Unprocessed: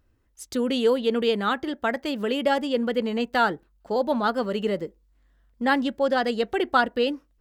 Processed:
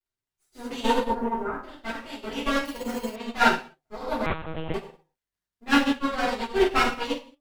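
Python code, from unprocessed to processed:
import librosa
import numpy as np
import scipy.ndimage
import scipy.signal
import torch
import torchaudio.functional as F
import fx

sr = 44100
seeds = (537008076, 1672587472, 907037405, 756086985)

y = fx.lower_of_two(x, sr, delay_ms=7.8)
y = fx.lowpass(y, sr, hz=1400.0, slope=24, at=(0.96, 1.58))
y = fx.dmg_crackle(y, sr, seeds[0], per_s=55.0, level_db=-41.0)
y = fx.rev_gated(y, sr, seeds[1], gate_ms=300, shape='falling', drr_db=-7.5)
y = fx.resample_bad(y, sr, factor=6, down='filtered', up='hold', at=(2.65, 3.16))
y = fx.lpc_monotone(y, sr, seeds[2], pitch_hz=160.0, order=8, at=(4.26, 4.74))
y = fx.upward_expand(y, sr, threshold_db=-35.0, expansion=2.5)
y = y * librosa.db_to_amplitude(-1.5)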